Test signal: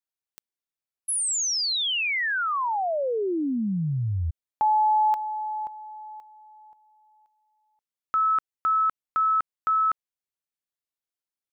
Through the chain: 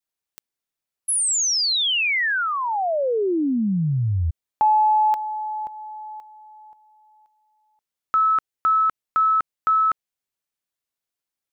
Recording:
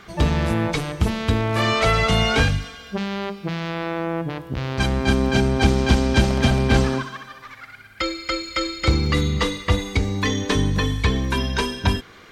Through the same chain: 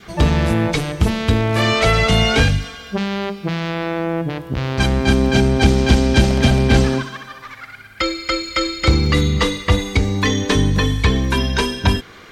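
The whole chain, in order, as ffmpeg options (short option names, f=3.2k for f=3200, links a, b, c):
-af "adynamicequalizer=threshold=0.0141:dfrequency=1100:dqfactor=1.7:tfrequency=1100:tqfactor=1.7:attack=5:release=100:ratio=0.375:range=2.5:mode=cutabove:tftype=bell,acontrast=20"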